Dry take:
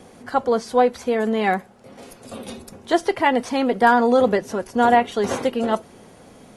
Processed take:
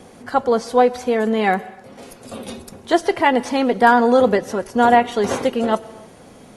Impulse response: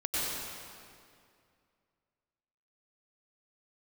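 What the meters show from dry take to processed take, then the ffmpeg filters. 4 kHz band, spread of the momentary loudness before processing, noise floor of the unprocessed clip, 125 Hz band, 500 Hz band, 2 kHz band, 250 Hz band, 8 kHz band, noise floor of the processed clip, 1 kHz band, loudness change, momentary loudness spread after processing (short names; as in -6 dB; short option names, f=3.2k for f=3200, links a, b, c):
+2.5 dB, 17 LU, -48 dBFS, +2.5 dB, +2.5 dB, +2.5 dB, +2.5 dB, +2.5 dB, -44 dBFS, +2.5 dB, +2.5 dB, 17 LU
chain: -filter_complex "[0:a]asplit=2[a][b];[1:a]atrim=start_sample=2205,afade=t=out:st=0.36:d=0.01,atrim=end_sample=16317[c];[b][c]afir=irnorm=-1:irlink=0,volume=-25.5dB[d];[a][d]amix=inputs=2:normalize=0,volume=2dB"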